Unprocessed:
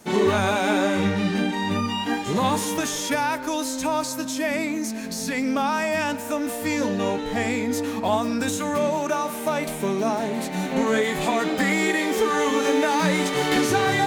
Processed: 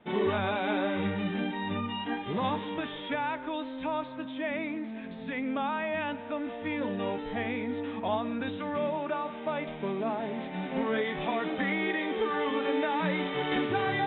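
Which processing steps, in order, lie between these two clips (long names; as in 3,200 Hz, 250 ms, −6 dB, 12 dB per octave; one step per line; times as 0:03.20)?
Chebyshev low-pass filter 3,700 Hz, order 8
level −7.5 dB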